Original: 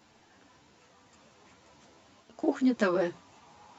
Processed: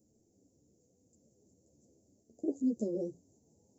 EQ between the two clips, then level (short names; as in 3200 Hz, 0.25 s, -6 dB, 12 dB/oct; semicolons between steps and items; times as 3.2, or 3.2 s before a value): inverse Chebyshev band-stop 1300–2800 Hz, stop band 70 dB; high shelf 5500 Hz +3.5 dB; -5.5 dB